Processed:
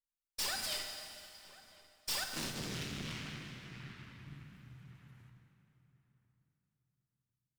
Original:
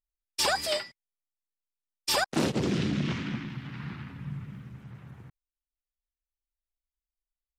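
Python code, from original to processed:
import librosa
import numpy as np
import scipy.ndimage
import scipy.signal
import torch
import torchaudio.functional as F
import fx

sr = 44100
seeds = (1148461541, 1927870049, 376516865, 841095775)

y = fx.tone_stack(x, sr, knobs='5-5-5')
y = fx.cheby_harmonics(y, sr, harmonics=(3, 6, 8), levels_db=(-20, -7, -8), full_scale_db=-23.0)
y = 10.0 ** (-34.0 / 20.0) * np.tanh(y / 10.0 ** (-34.0 / 20.0))
y = fx.echo_filtered(y, sr, ms=1045, feedback_pct=22, hz=1500.0, wet_db=-18)
y = fx.rev_plate(y, sr, seeds[0], rt60_s=2.8, hf_ratio=0.95, predelay_ms=0, drr_db=3.5)
y = F.gain(torch.from_numpy(y), 3.5).numpy()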